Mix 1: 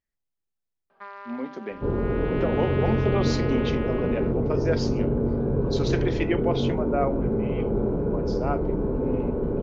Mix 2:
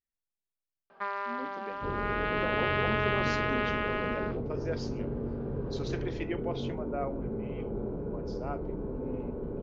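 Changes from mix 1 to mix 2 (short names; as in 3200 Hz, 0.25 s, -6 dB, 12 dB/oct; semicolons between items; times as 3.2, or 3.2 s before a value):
speech -9.5 dB; first sound +6.5 dB; second sound -10.5 dB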